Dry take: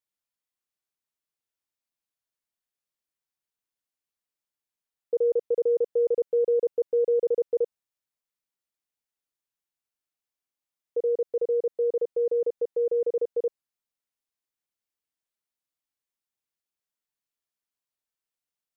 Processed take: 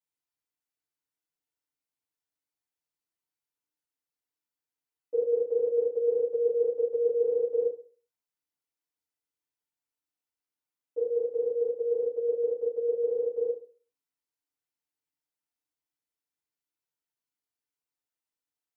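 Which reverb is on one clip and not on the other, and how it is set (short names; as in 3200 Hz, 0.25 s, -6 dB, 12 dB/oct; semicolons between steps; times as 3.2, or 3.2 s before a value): FDN reverb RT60 0.41 s, low-frequency decay 1×, high-frequency decay 0.7×, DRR -10 dB; gain -13 dB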